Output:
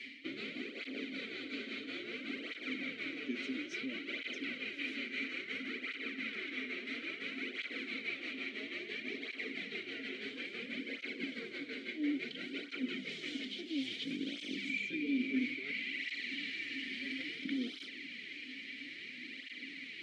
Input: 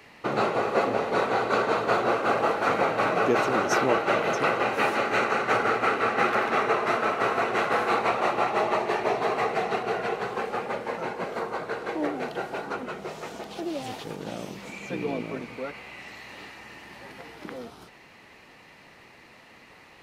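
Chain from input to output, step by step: ten-band graphic EQ 125 Hz -5 dB, 1 kHz -7 dB, 2 kHz +4 dB, 4 kHz +10 dB, 8 kHz +8 dB; reverse; compression 12:1, threshold -37 dBFS, peak gain reduction 20 dB; reverse; vowel filter i; cancelling through-zero flanger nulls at 0.59 Hz, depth 6.8 ms; trim +15.5 dB

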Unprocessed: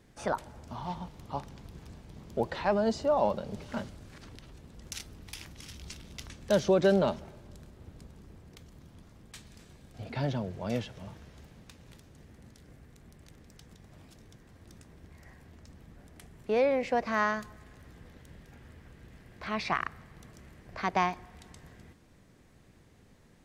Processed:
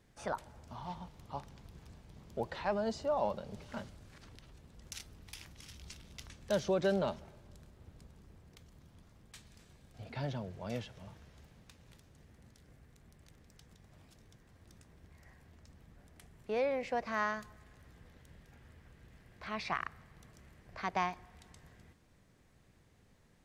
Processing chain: peaking EQ 290 Hz -3.5 dB 1.4 oct; trim -5.5 dB

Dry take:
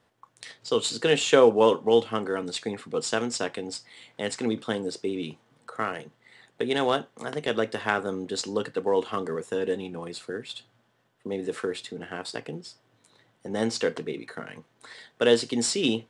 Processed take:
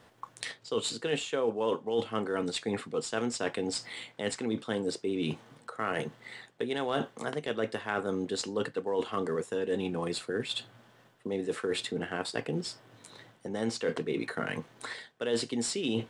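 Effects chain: reverse; compression 6:1, threshold -38 dBFS, peak gain reduction 23 dB; reverse; dynamic bell 5.6 kHz, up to -4 dB, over -58 dBFS, Q 1.2; trim +9 dB

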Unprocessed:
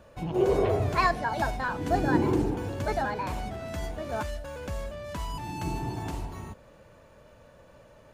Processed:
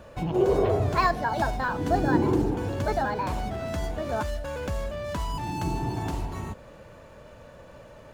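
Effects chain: dynamic bell 2.3 kHz, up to -4 dB, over -48 dBFS, Q 1.9; in parallel at +1 dB: compression, threshold -36 dBFS, peak gain reduction 17 dB; on the sum: decimation joined by straight lines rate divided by 2×

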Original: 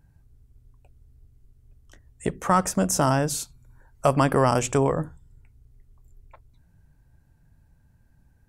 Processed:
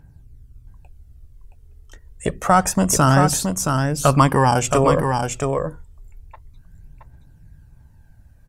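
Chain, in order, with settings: phaser 0.28 Hz, delay 2.4 ms, feedback 48%; 4.27–4.68 s: comb of notches 660 Hz; delay 672 ms -5 dB; trim +5 dB

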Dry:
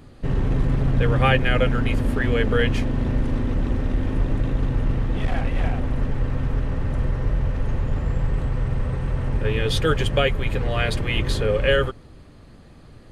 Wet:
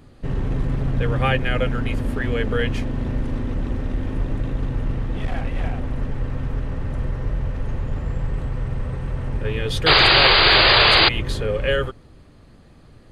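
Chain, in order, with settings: painted sound noise, 9.86–11.09 s, 310–4900 Hz -12 dBFS; trim -2 dB

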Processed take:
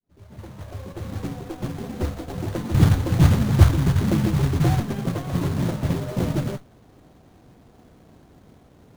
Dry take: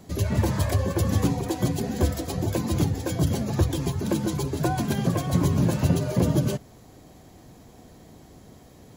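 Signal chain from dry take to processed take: fade-in on the opening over 2.35 s; 2.74–4.80 s: tone controls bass +12 dB, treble +4 dB; modulation noise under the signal 11 dB; sliding maximum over 17 samples; trim -2 dB

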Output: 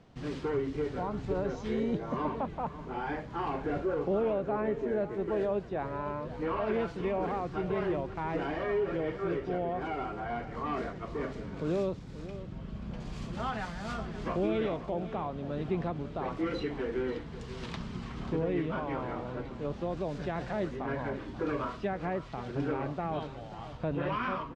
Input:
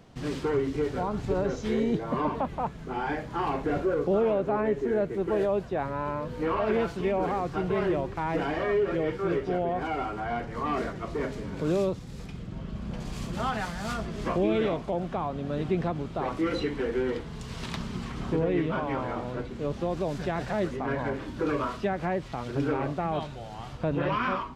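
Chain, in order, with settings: distance through air 67 m; on a send: delay 536 ms -14 dB; on the sum: trim -4.5 dB

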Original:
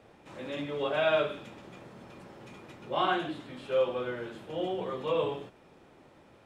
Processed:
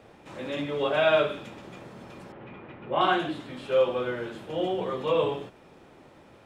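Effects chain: 2.32–3.01 s: low-pass 2.8 kHz 24 dB/octave; trim +4.5 dB

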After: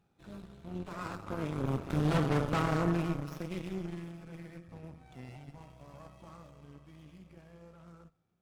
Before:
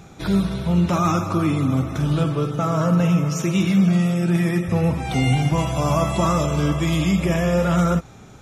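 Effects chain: Doppler pass-by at 2.32 s, 10 m/s, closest 3.3 m; band-stop 2.1 kHz, Q 22; on a send at -22.5 dB: reverberation RT60 1.1 s, pre-delay 7 ms; on the sum: Chebyshev shaper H 6 -10 dB, 7 -26 dB, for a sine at -11 dBFS; sliding maximum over 5 samples; trim -8.5 dB

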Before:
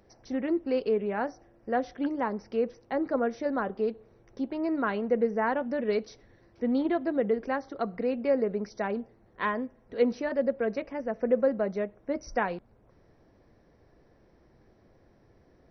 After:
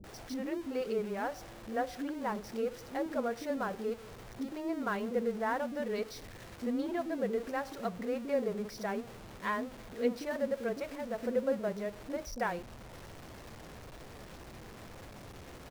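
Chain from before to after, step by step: jump at every zero crossing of -37.5 dBFS; bands offset in time lows, highs 40 ms, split 350 Hz; trim -5.5 dB

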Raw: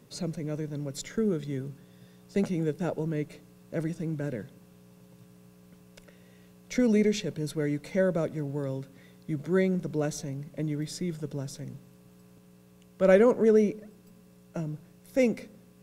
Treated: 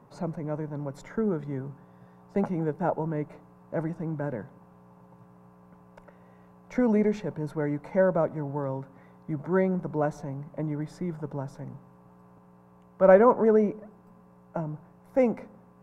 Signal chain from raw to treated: FFT filter 470 Hz 0 dB, 900 Hz +14 dB, 3.4 kHz -15 dB

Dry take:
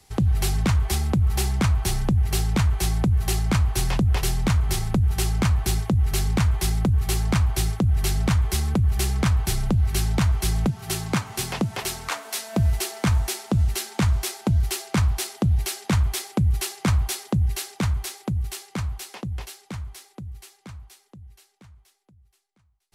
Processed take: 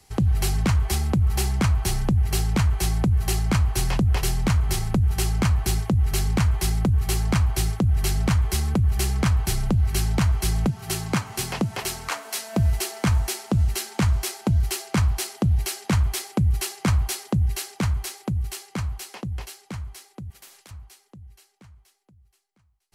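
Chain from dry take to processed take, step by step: band-stop 3.6 kHz, Q 17; 20.30–20.71 s: spectrum-flattening compressor 4:1

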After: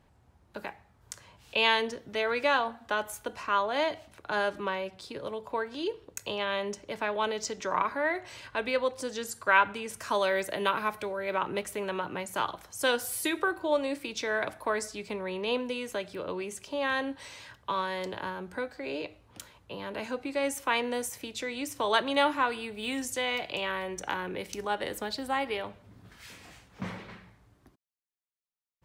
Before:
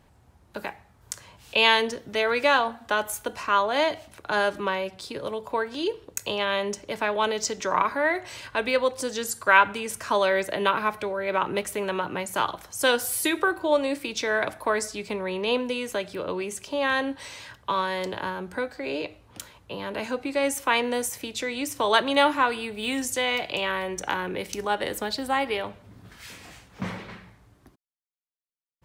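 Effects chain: treble shelf 6.7 kHz -5.5 dB, from 10.00 s +6 dB, from 11.34 s -2 dB; trim -5 dB

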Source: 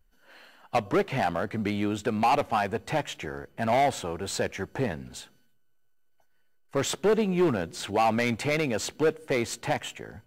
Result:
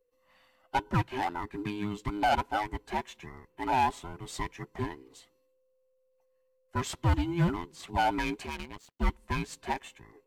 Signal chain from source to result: every band turned upside down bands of 500 Hz; 8.46–9.00 s: power-law waveshaper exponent 2; upward expansion 1.5:1, over -39 dBFS; trim -2 dB

